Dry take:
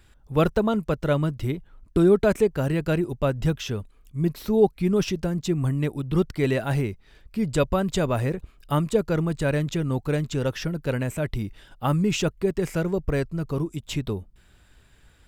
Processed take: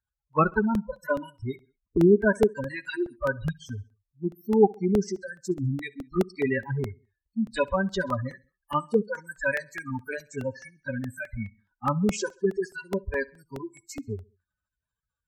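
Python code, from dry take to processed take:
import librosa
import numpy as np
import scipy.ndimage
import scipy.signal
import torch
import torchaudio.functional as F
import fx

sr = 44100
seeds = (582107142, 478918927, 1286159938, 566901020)

y = fx.envelope_flatten(x, sr, power=0.6)
y = fx.noise_reduce_blind(y, sr, reduce_db=27)
y = fx.spec_gate(y, sr, threshold_db=-15, keep='strong')
y = fx.peak_eq(y, sr, hz=1400.0, db=10.5, octaves=0.82)
y = fx.notch_comb(y, sr, f0_hz=700.0)
y = fx.env_phaser(y, sr, low_hz=350.0, high_hz=4000.0, full_db=-21.0)
y = fx.echo_feedback(y, sr, ms=66, feedback_pct=44, wet_db=-23.5)
y = fx.buffer_crackle(y, sr, first_s=0.33, period_s=0.21, block=64, kind='repeat')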